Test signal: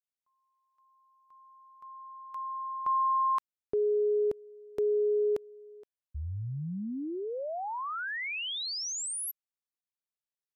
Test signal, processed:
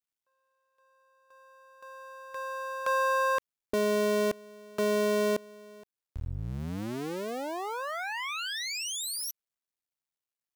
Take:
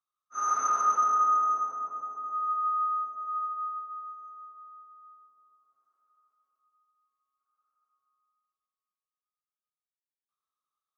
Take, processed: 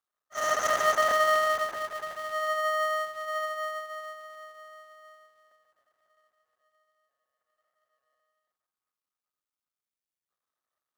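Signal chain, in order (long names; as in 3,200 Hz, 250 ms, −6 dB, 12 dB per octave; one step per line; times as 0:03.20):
sub-harmonics by changed cycles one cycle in 2, muted
level +3.5 dB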